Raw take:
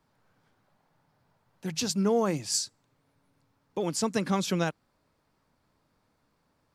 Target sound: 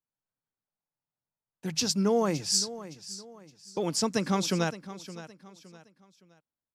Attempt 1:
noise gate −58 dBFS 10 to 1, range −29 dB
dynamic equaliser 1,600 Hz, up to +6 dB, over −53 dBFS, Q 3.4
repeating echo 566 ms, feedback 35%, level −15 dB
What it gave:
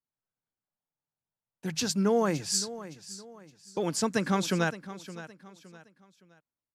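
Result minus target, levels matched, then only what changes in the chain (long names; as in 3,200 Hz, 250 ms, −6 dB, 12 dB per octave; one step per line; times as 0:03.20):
2,000 Hz band +4.5 dB
change: dynamic equaliser 5,300 Hz, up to +6 dB, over −53 dBFS, Q 3.4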